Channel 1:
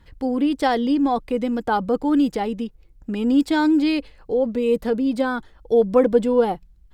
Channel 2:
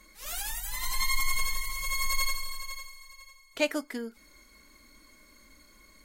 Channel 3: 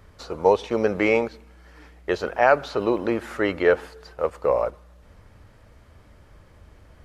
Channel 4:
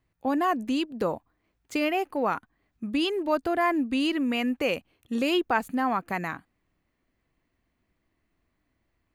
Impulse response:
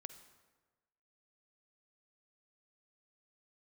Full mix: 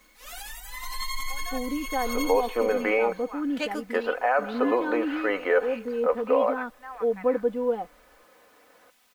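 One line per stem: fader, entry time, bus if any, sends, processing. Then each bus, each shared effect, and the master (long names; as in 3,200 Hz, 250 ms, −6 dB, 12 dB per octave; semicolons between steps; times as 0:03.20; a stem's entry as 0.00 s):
−11.0 dB, 1.30 s, bus A, no send, no processing
−1.5 dB, 0.00 s, no bus, no send, no processing
+1.0 dB, 1.85 s, bus A, no send, high-pass filter 390 Hz 12 dB per octave
−10.5 dB, 1.05 s, bus A, no send, high-pass filter 1,100 Hz 12 dB per octave
bus A: 0.0 dB, low-pass filter 2,600 Hz 12 dB per octave; brickwall limiter −13.5 dBFS, peak gain reduction 8.5 dB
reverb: not used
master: bit-depth reduction 10 bits, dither triangular; bass and treble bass −7 dB, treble −7 dB; comb filter 4 ms, depth 59%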